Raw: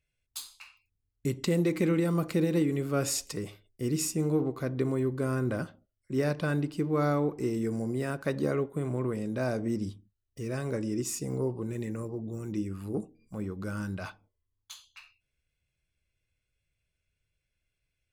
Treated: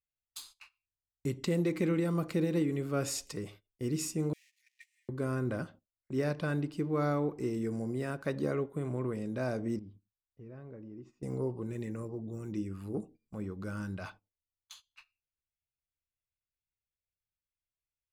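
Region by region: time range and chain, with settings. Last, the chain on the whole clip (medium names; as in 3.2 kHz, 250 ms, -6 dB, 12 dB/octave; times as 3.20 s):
4.33–5.09 s: jump at every zero crossing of -41.5 dBFS + rippled Chebyshev high-pass 1.8 kHz, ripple 6 dB
9.79–11.23 s: tape spacing loss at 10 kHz 42 dB + compression 2:1, threshold -49 dBFS
whole clip: gate -49 dBFS, range -16 dB; treble shelf 7.9 kHz -5 dB; trim -3.5 dB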